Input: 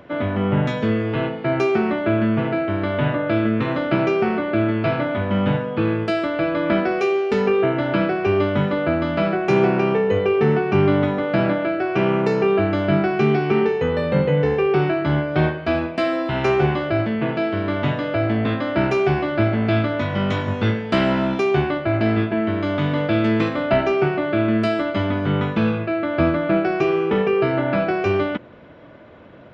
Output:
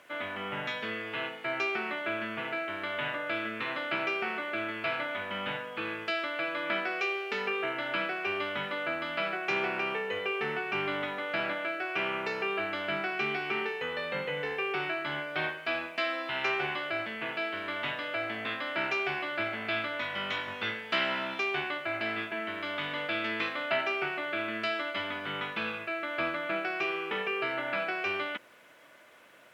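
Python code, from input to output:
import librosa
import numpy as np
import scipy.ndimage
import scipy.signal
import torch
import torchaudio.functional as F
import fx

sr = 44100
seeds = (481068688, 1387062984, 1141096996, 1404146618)

y = fx.dmg_noise_colour(x, sr, seeds[0], colour='violet', level_db=-53.0)
y = fx.bandpass_q(y, sr, hz=2600.0, q=1.0)
y = y * 10.0 ** (-1.5 / 20.0)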